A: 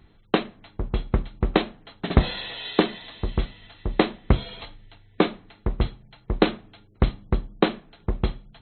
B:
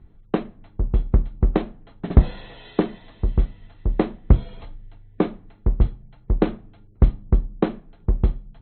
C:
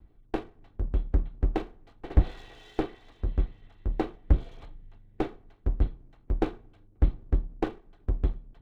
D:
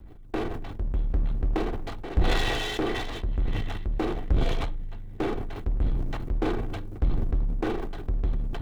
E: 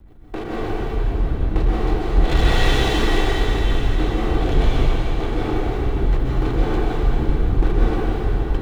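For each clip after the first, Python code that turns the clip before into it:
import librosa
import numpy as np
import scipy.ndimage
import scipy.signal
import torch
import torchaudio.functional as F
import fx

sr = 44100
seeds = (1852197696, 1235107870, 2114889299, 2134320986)

y1 = fx.lowpass(x, sr, hz=2200.0, slope=6)
y1 = fx.tilt_eq(y1, sr, slope=-2.5)
y1 = y1 * 10.0 ** (-4.0 / 20.0)
y2 = fx.lower_of_two(y1, sr, delay_ms=2.6)
y2 = y2 * 10.0 ** (-6.5 / 20.0)
y3 = fx.power_curve(y2, sr, exponent=0.7)
y3 = fx.sustainer(y3, sr, db_per_s=26.0)
y3 = y3 * 10.0 ** (-5.0 / 20.0)
y4 = fx.rev_plate(y3, sr, seeds[0], rt60_s=4.9, hf_ratio=0.8, predelay_ms=115, drr_db=-8.0)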